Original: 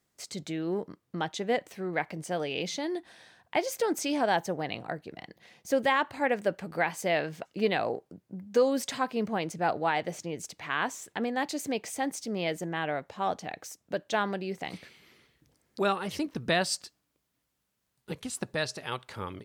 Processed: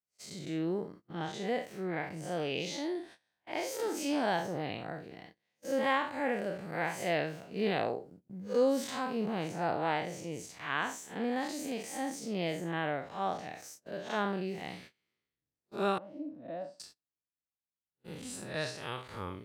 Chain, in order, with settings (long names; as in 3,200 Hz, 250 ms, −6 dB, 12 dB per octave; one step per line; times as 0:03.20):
spectrum smeared in time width 123 ms
noise gate −51 dBFS, range −24 dB
0:15.98–0:16.80: pair of resonant band-passes 410 Hz, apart 1 octave